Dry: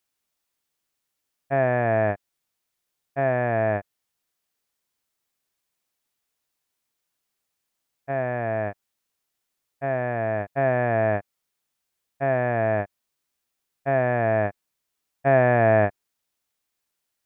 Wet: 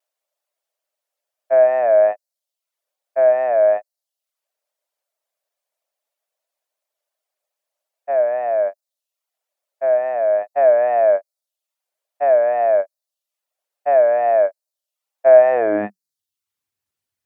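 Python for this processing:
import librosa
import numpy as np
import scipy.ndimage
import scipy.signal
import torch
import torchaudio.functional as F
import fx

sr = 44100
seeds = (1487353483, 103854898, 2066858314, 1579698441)

y = fx.vibrato(x, sr, rate_hz=2.4, depth_cents=84.0)
y = fx.dereverb_blind(y, sr, rt60_s=0.53)
y = fx.filter_sweep_highpass(y, sr, from_hz=600.0, to_hz=92.0, start_s=15.48, end_s=16.23, q=6.5)
y = y * librosa.db_to_amplitude(-3.0)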